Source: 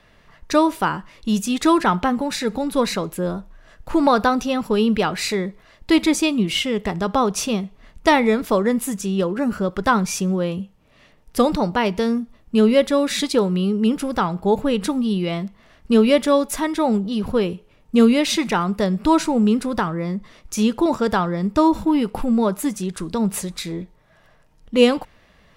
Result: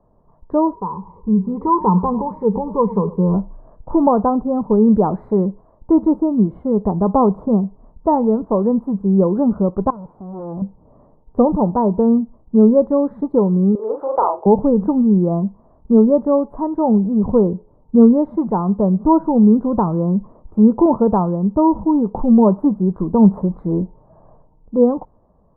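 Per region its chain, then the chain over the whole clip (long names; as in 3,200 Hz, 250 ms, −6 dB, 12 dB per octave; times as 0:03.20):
0:00.73–0:03.34: EQ curve with evenly spaced ripples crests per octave 0.83, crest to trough 17 dB + downward compressor 1.5 to 1, threshold −37 dBFS + feedback echo with a swinging delay time 103 ms, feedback 37%, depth 144 cents, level −18 dB
0:09.90–0:10.62: high-pass filter 64 Hz 6 dB per octave + tube saturation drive 35 dB, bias 0.5
0:13.75–0:14.46: Butterworth high-pass 430 Hz + leveller curve on the samples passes 1 + double-tracking delay 40 ms −3 dB
whole clip: automatic gain control; elliptic low-pass filter 1,000 Hz, stop band 60 dB; dynamic equaliser 200 Hz, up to +4 dB, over −27 dBFS, Q 3.2; level −1 dB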